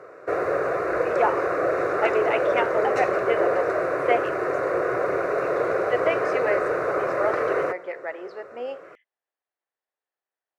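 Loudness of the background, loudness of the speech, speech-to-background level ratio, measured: -24.5 LUFS, -28.5 LUFS, -4.0 dB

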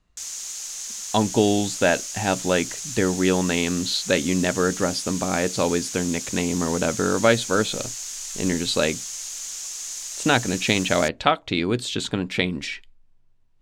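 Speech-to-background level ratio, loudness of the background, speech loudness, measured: 7.0 dB, -30.5 LUFS, -23.5 LUFS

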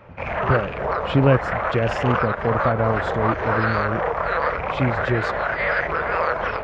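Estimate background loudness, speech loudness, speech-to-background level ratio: -23.5 LUFS, -24.0 LUFS, -0.5 dB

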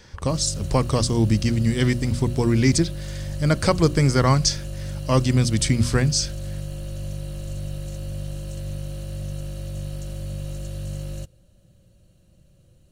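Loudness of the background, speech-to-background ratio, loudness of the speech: -33.0 LUFS, 12.0 dB, -21.0 LUFS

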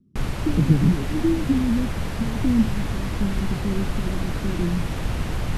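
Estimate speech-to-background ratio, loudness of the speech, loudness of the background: 3.5 dB, -25.0 LUFS, -28.5 LUFS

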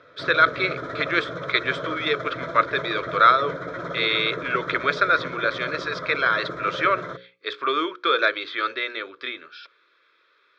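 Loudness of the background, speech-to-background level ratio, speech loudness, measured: -32.5 LUFS, 9.5 dB, -23.0 LUFS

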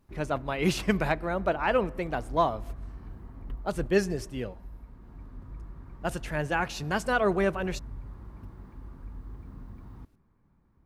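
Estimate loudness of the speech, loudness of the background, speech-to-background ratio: -29.0 LUFS, -45.0 LUFS, 16.0 dB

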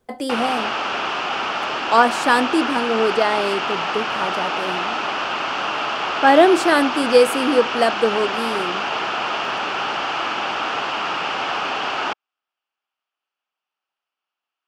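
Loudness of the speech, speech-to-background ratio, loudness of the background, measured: -19.0 LUFS, 4.0 dB, -23.0 LUFS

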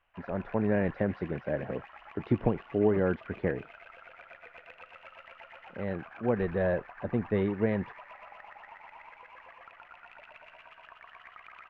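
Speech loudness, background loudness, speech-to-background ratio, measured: -31.0 LUFS, -49.5 LUFS, 18.5 dB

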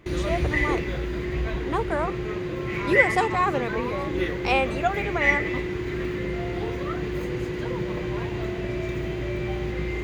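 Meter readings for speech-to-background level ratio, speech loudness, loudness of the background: 0.0 dB, -27.5 LUFS, -27.5 LUFS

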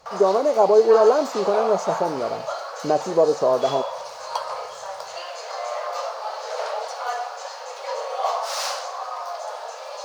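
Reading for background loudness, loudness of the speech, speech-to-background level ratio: -29.5 LUFS, -20.0 LUFS, 9.5 dB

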